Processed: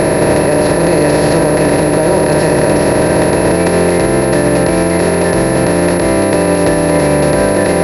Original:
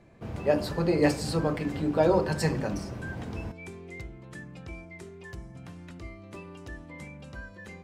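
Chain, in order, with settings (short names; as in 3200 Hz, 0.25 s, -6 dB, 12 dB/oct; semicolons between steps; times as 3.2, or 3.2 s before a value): per-bin compression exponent 0.2; maximiser +13 dB; pulse-width modulation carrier 11000 Hz; gain -1 dB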